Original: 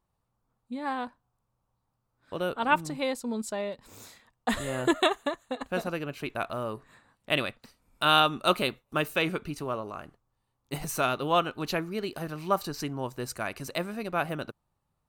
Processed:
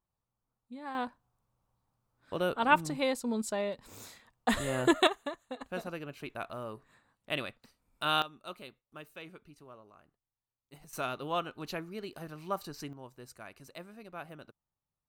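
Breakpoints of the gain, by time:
-9.5 dB
from 0.95 s -0.5 dB
from 5.07 s -7.5 dB
from 8.22 s -20 dB
from 10.93 s -8.5 dB
from 12.93 s -15 dB

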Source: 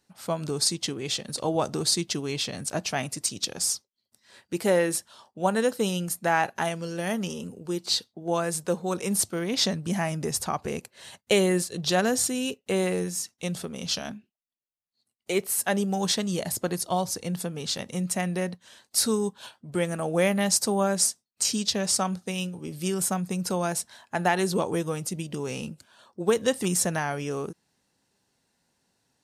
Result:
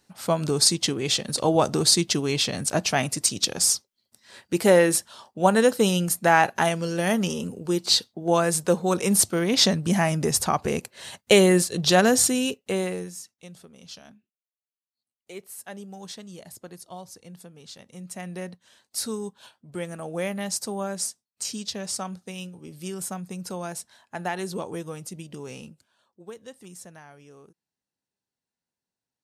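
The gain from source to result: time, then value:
12.32 s +5.5 dB
12.86 s -2 dB
13.48 s -14 dB
17.83 s -14 dB
18.39 s -6 dB
25.53 s -6 dB
26.37 s -19 dB

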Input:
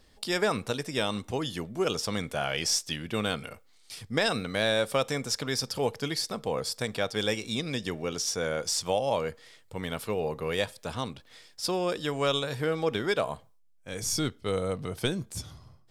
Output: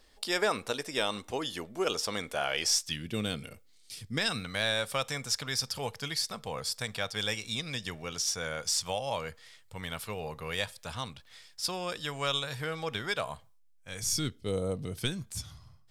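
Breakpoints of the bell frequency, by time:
bell -11.5 dB 2 oct
2.6 s 130 Hz
3.07 s 1000 Hz
3.96 s 1000 Hz
4.54 s 340 Hz
13.97 s 340 Hz
14.67 s 2100 Hz
15.2 s 390 Hz

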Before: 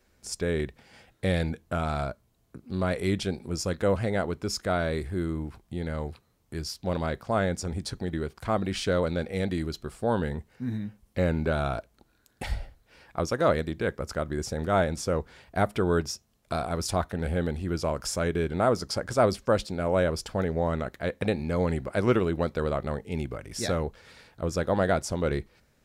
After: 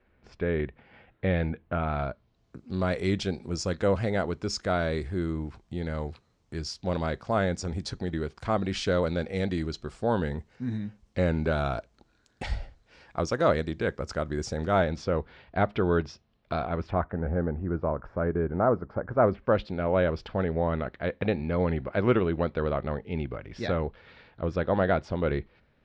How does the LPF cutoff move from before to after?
LPF 24 dB/oct
1.9 s 2800 Hz
2.6 s 7100 Hz
14.57 s 7100 Hz
15.19 s 3900 Hz
16.58 s 3900 Hz
17.22 s 1500 Hz
19.11 s 1500 Hz
19.66 s 3600 Hz

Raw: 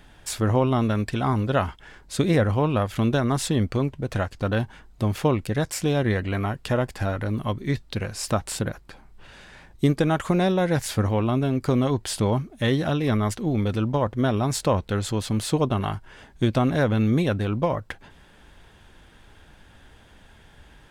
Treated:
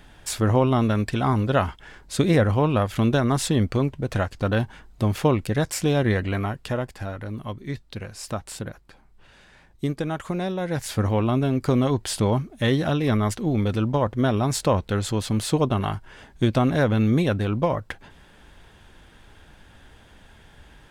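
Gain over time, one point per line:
6.25 s +1.5 dB
7.04 s -6 dB
10.58 s -6 dB
11.1 s +1 dB

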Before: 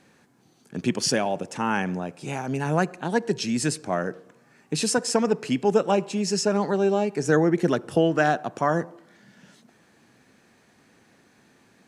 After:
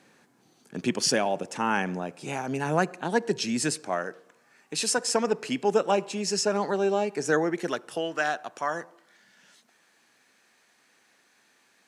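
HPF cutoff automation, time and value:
HPF 6 dB/oct
3.59 s 230 Hz
4.08 s 840 Hz
4.76 s 840 Hz
5.24 s 400 Hz
7.18 s 400 Hz
7.95 s 1400 Hz

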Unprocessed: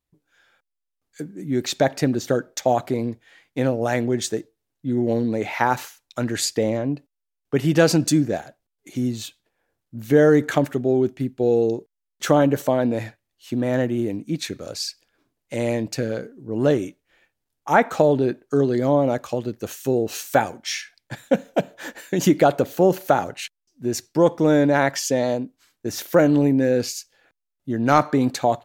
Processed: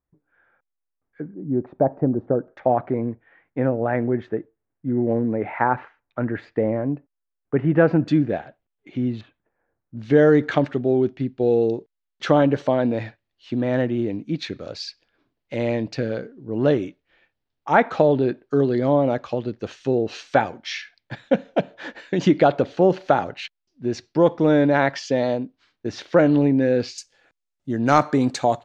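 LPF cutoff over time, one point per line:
LPF 24 dB/oct
1800 Hz
from 1.34 s 1000 Hz
from 2.48 s 1900 Hz
from 8.08 s 3200 Hz
from 9.21 s 1800 Hz
from 9.97 s 4500 Hz
from 26.98 s 8400 Hz

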